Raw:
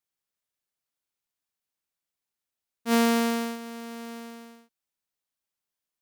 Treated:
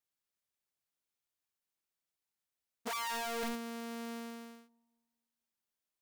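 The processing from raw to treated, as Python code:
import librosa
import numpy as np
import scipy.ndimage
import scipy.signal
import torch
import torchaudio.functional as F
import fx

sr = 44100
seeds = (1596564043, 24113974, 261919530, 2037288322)

y = fx.echo_wet_lowpass(x, sr, ms=236, feedback_pct=33, hz=630.0, wet_db=-20.0)
y = (np.mod(10.0 ** (29.0 / 20.0) * y + 1.0, 2.0) - 1.0) / 10.0 ** (29.0 / 20.0)
y = y * librosa.db_to_amplitude(-3.5)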